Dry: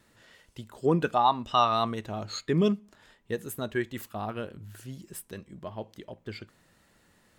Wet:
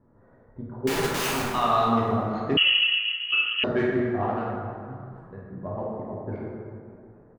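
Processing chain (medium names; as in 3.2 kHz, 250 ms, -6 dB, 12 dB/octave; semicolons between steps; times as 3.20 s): local Wiener filter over 15 samples; level-controlled noise filter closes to 850 Hz, open at -22 dBFS; 4.30–5.50 s: peaking EQ 290 Hz -12.5 dB 2.4 oct; peak limiter -20.5 dBFS, peak gain reduction 10.5 dB; distance through air 82 m; 0.87–1.42 s: integer overflow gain 30.5 dB; frequency-shifting echo 272 ms, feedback 47%, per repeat +110 Hz, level -24 dB; plate-style reverb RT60 2.3 s, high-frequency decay 0.45×, DRR -6 dB; 2.57–3.64 s: frequency inversion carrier 3.1 kHz; trim +2.5 dB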